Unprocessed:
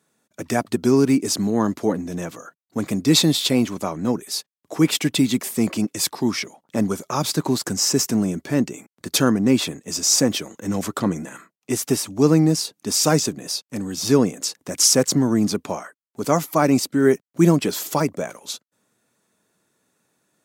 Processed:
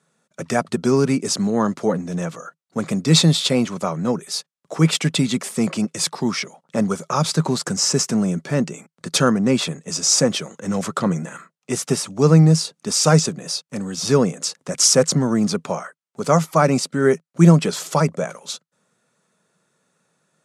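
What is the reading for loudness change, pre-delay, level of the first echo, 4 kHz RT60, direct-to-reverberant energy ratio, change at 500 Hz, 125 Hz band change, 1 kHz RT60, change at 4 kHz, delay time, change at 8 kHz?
+1.0 dB, no reverb, no echo, no reverb, no reverb, +2.0 dB, +6.0 dB, no reverb, +1.0 dB, no echo, +0.5 dB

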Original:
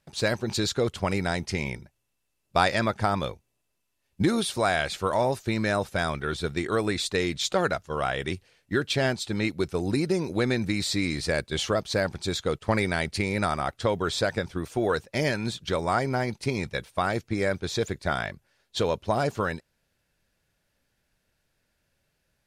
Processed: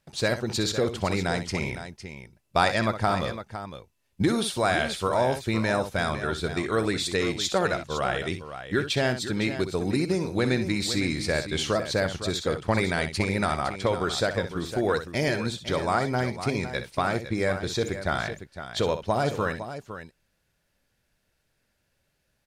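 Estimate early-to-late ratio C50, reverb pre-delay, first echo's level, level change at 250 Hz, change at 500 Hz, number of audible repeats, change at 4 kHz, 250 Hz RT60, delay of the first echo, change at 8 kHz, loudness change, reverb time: no reverb, no reverb, -10.5 dB, +0.5 dB, +0.5 dB, 2, +0.5 dB, no reverb, 63 ms, +0.5 dB, +0.5 dB, no reverb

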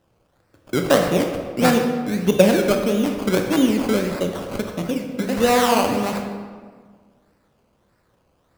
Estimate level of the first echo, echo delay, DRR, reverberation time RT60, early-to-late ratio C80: no echo, no echo, 3.5 dB, 1.7 s, 7.0 dB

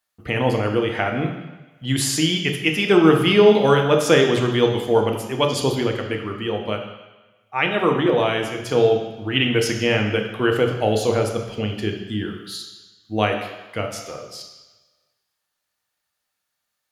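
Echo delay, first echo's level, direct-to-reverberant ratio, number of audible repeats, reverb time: no echo, no echo, 2.5 dB, no echo, 1.1 s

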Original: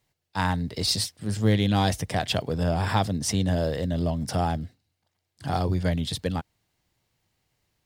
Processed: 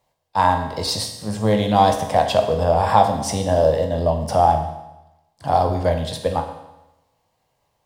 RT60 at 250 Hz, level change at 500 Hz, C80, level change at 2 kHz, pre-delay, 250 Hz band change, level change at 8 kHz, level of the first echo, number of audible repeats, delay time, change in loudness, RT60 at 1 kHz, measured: 0.95 s, +11.5 dB, 9.5 dB, +2.5 dB, 14 ms, +1.5 dB, +1.5 dB, no echo, no echo, no echo, +7.0 dB, 0.95 s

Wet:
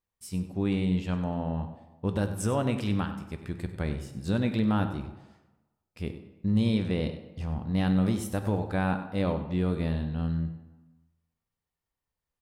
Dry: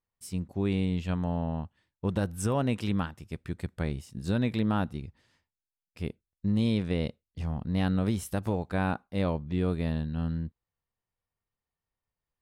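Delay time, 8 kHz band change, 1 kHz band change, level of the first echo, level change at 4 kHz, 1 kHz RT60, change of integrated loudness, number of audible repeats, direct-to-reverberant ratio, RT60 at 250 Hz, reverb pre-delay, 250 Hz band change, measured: 97 ms, +0.5 dB, +1.0 dB, -13.5 dB, +0.5 dB, 1.2 s, +1.0 dB, 1, 7.0 dB, 1.1 s, 3 ms, +1.5 dB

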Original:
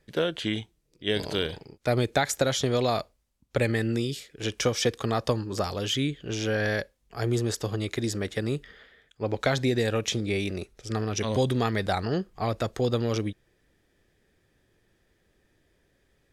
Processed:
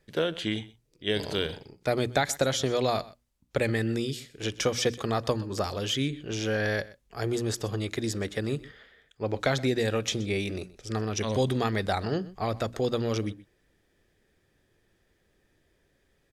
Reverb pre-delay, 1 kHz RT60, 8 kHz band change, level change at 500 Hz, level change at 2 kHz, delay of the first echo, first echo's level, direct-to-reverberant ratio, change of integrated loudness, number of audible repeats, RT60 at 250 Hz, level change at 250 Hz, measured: no reverb, no reverb, -1.0 dB, -1.0 dB, -1.0 dB, 125 ms, -20.0 dB, no reverb, -1.5 dB, 1, no reverb, -1.5 dB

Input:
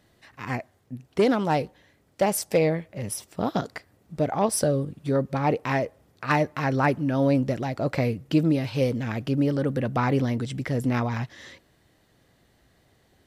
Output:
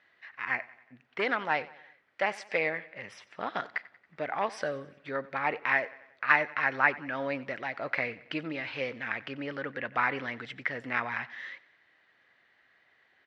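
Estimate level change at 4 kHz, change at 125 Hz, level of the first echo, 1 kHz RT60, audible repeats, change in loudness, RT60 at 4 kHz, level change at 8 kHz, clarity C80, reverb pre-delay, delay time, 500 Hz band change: -4.5 dB, -21.5 dB, -20.0 dB, no reverb, 3, -6.0 dB, no reverb, under -20 dB, no reverb, no reverb, 92 ms, -10.0 dB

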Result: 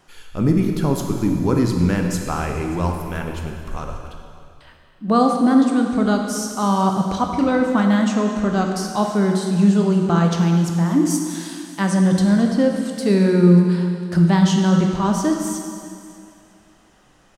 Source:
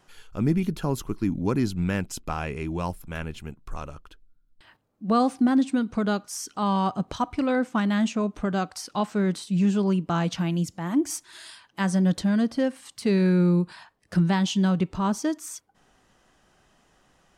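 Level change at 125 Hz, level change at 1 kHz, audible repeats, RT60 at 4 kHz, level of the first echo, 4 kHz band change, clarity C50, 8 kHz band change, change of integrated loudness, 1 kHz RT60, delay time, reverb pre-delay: +8.0 dB, +6.5 dB, 1, 2.2 s, -21.5 dB, +5.0 dB, 3.5 dB, +7.0 dB, +7.0 dB, 2.3 s, 588 ms, 7 ms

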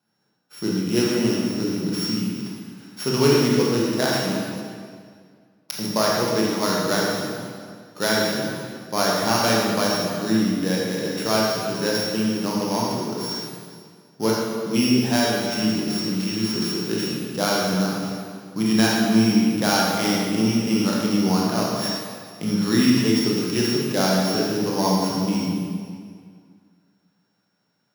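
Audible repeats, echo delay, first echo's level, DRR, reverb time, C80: no echo, no echo, no echo, -4.0 dB, 2.0 s, 0.5 dB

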